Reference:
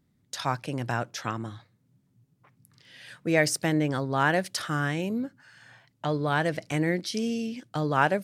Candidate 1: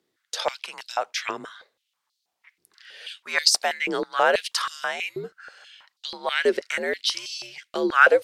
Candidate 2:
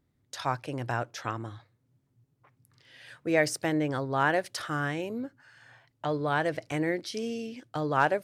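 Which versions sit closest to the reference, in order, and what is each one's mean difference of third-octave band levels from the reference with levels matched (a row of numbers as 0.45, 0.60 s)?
2, 1; 2.0, 10.0 dB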